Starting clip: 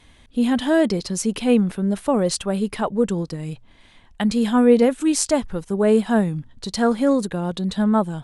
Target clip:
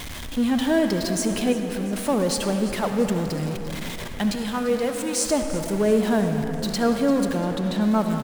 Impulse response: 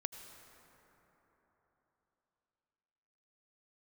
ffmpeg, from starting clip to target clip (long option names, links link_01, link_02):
-filter_complex "[0:a]aeval=exprs='val(0)+0.5*0.0596*sgn(val(0))':channel_layout=same,asettb=1/sr,asplit=3[link_01][link_02][link_03];[link_01]atrim=end=1.524[link_04];[link_02]atrim=start=1.52:end=1.93,asetpts=PTS-STARTPTS,afade=type=in:duration=0.004:curve=qsin,afade=type=out:start_time=0.406:duration=0.004:curve=qsin,acompressor=threshold=-22dB:ratio=6[link_05];[link_03]atrim=start=1.926[link_06];[link_04][link_05]acrossfade=duration=0.004:curve1=hsin:curve2=qsin[link_07];[link_07][link_06]acrossfade=duration=0.004:curve1=qsin:curve2=hsin,asettb=1/sr,asplit=3[link_08][link_09][link_10];[link_08]atrim=end=4.354[link_11];[link_09]atrim=start=4.35:end=5.25,asetpts=PTS-STARTPTS,afade=type=in:duration=0.004:curve=qsin,afade=type=out:start_time=0.896:duration=0.004:curve=qsin,highpass=frequency=730:poles=1[link_12];[link_10]atrim=start=5.246[link_13];[link_11][link_12]acrossfade=duration=0.004:curve1=hsin:curve2=qsin[link_14];[link_14][link_13]acrossfade=duration=0.004:curve1=qsin:curve2=hsin,asettb=1/sr,asplit=3[link_15][link_16][link_17];[link_15]atrim=end=7.374[link_18];[link_16]atrim=start=7.37:end=7.81,asetpts=PTS-STARTPTS,afade=type=in:duration=0.004:curve=qsin,afade=type=out:start_time=0.436:duration=0.004:curve=qsin,aemphasis=mode=reproduction:type=cd[link_19];[link_17]atrim=start=7.806[link_20];[link_18][link_19]acrossfade=duration=0.004:curve1=hsin:curve2=qsin[link_21];[link_21][link_20]acrossfade=duration=0.004:curve1=qsin:curve2=hsin,asplit=6[link_22][link_23][link_24][link_25][link_26][link_27];[link_23]adelay=344,afreqshift=41,volume=-16dB[link_28];[link_24]adelay=688,afreqshift=82,volume=-21.4dB[link_29];[link_25]adelay=1032,afreqshift=123,volume=-26.7dB[link_30];[link_26]adelay=1376,afreqshift=164,volume=-32.1dB[link_31];[link_27]adelay=1720,afreqshift=205,volume=-37.4dB[link_32];[link_22][link_28][link_29][link_30][link_31][link_32]amix=inputs=6:normalize=0[link_33];[1:a]atrim=start_sample=2205,asetrate=57330,aresample=44100[link_34];[link_33][link_34]afir=irnorm=-1:irlink=0"